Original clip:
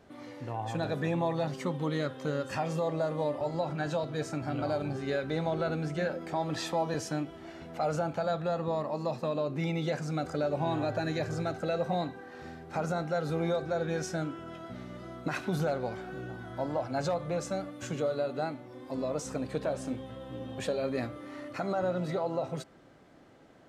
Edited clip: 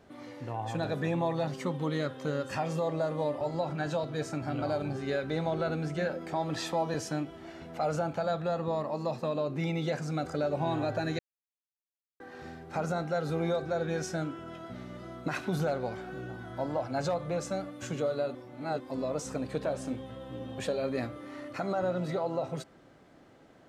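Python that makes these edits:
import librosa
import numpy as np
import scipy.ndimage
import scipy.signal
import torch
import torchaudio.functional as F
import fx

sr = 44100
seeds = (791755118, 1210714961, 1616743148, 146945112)

y = fx.edit(x, sr, fx.silence(start_s=11.19, length_s=1.01),
    fx.reverse_span(start_s=18.35, length_s=0.45), tone=tone)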